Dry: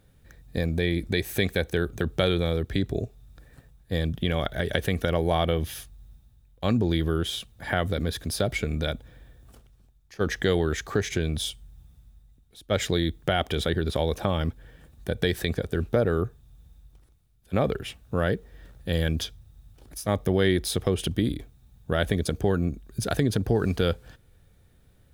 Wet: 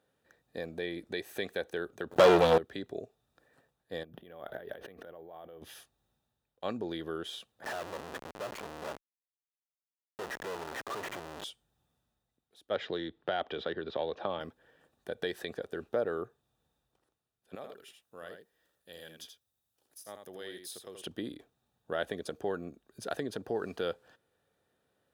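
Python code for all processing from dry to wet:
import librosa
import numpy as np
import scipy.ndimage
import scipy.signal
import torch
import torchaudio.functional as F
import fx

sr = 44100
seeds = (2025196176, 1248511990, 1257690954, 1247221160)

y = fx.chain(x, sr, fx.highpass(hz=64.0, slope=6),
    fx.low_shelf(hz=390.0, db=6.0),
    fx.leveller(passes=5), at=(2.11, 2.58))
y = fx.chain(y, sr, fx.lowpass(hz=1500.0, slope=6),
    fx.over_compress(threshold_db=-36.0, ratio=-1.0),
    fx.resample_bad(factor=3, down='filtered', up='hold'), at=(4.03, 5.62))
y = fx.chain(y, sr, fx.lowpass(hz=2800.0, slope=24),
    fx.comb(ms=1.6, depth=0.36),
    fx.schmitt(flips_db=-38.0), at=(7.64, 11.44))
y = fx.chain(y, sr, fx.self_delay(depth_ms=0.052),
    fx.lowpass(hz=4200.0, slope=24),
    fx.band_squash(depth_pct=40), at=(12.75, 14.4))
y = fx.chain(y, sr, fx.pre_emphasis(coefficient=0.8),
    fx.echo_single(ms=81, db=-6.5), at=(17.55, 21.02))
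y = scipy.signal.sosfilt(scipy.signal.butter(2, 530.0, 'highpass', fs=sr, output='sos'), y)
y = fx.tilt_eq(y, sr, slope=-2.5)
y = fx.notch(y, sr, hz=2200.0, q=10.0)
y = F.gain(torch.from_numpy(y), -6.0).numpy()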